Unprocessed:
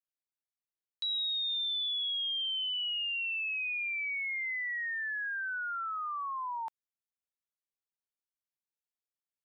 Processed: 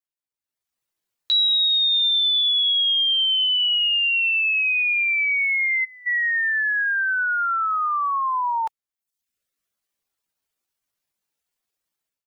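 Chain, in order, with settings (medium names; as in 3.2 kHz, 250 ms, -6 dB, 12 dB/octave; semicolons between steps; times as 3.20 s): reverb removal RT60 0.63 s; level rider gain up to 15 dB; tempo 0.77×; time-frequency box 5.85–6.07 s, 940–4300 Hz -23 dB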